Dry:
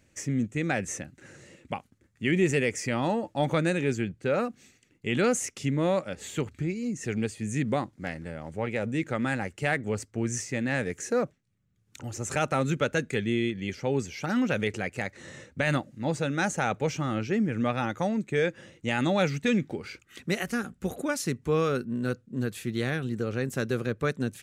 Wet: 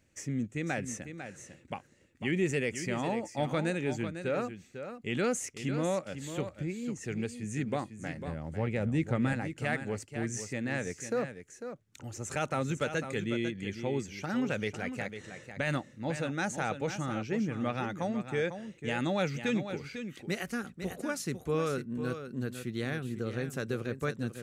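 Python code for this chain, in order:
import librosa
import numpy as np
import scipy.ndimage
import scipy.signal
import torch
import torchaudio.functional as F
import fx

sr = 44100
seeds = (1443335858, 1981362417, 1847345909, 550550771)

y = fx.low_shelf(x, sr, hz=220.0, db=11.5, at=(8.27, 9.33))
y = y + 10.0 ** (-9.5 / 20.0) * np.pad(y, (int(499 * sr / 1000.0), 0))[:len(y)]
y = y * 10.0 ** (-5.5 / 20.0)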